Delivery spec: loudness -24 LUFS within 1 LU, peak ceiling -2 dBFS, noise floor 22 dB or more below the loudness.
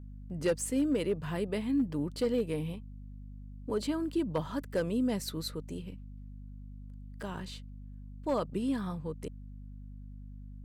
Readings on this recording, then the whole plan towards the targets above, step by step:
clipped samples 0.3%; clipping level -22.5 dBFS; hum 50 Hz; highest harmonic 250 Hz; hum level -43 dBFS; loudness -33.5 LUFS; peak level -22.5 dBFS; loudness target -24.0 LUFS
-> clip repair -22.5 dBFS; de-hum 50 Hz, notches 5; trim +9.5 dB

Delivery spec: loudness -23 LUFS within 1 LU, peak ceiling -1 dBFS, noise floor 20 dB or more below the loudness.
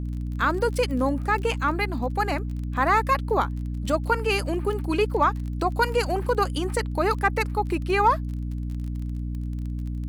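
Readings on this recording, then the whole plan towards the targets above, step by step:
tick rate 27 per s; hum 60 Hz; highest harmonic 300 Hz; hum level -27 dBFS; loudness -25.0 LUFS; peak level -8.0 dBFS; loudness target -23.0 LUFS
-> de-click; de-hum 60 Hz, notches 5; trim +2 dB

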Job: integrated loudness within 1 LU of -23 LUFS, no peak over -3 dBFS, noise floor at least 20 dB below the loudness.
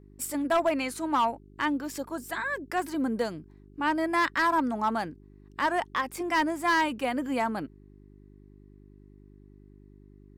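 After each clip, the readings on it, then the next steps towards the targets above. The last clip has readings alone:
clipped samples 0.6%; clipping level -18.5 dBFS; hum 50 Hz; highest harmonic 400 Hz; hum level -51 dBFS; loudness -28.5 LUFS; peak level -18.5 dBFS; loudness target -23.0 LUFS
-> clip repair -18.5 dBFS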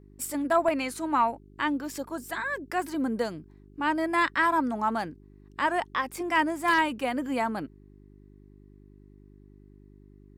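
clipped samples 0.0%; hum 50 Hz; highest harmonic 400 Hz; hum level -51 dBFS
-> de-hum 50 Hz, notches 8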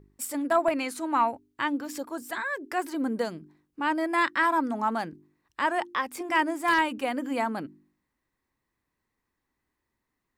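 hum not found; loudness -28.0 LUFS; peak level -11.0 dBFS; loudness target -23.0 LUFS
-> trim +5 dB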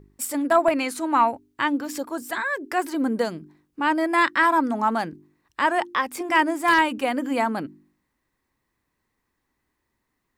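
loudness -23.0 LUFS; peak level -6.0 dBFS; noise floor -77 dBFS

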